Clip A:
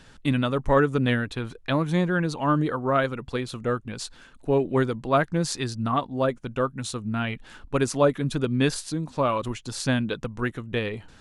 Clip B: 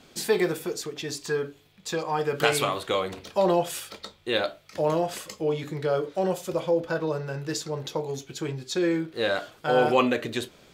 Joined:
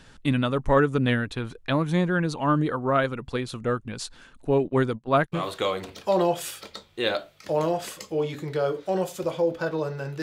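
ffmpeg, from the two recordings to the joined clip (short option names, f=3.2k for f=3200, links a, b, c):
-filter_complex "[0:a]asplit=3[a][b][c];[a]afade=t=out:st=4.64:d=0.02[d];[b]agate=range=-23dB:threshold=-33dB:ratio=16:release=100:detection=peak,afade=t=in:st=4.64:d=0.02,afade=t=out:st=5.44:d=0.02[e];[c]afade=t=in:st=5.44:d=0.02[f];[d][e][f]amix=inputs=3:normalize=0,apad=whole_dur=10.22,atrim=end=10.22,atrim=end=5.44,asetpts=PTS-STARTPTS[g];[1:a]atrim=start=2.61:end=7.51,asetpts=PTS-STARTPTS[h];[g][h]acrossfade=d=0.12:c1=tri:c2=tri"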